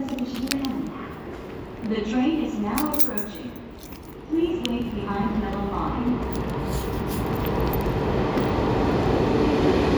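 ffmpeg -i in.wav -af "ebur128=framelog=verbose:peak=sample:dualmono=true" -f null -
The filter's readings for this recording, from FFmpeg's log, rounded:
Integrated loudness:
  I:         -21.5 LUFS
  Threshold: -32.0 LUFS
Loudness range:
  LRA:         3.4 LU
  Threshold: -42.4 LUFS
  LRA low:   -24.1 LUFS
  LRA high:  -20.6 LUFS
Sample peak:
  Peak:       -3.1 dBFS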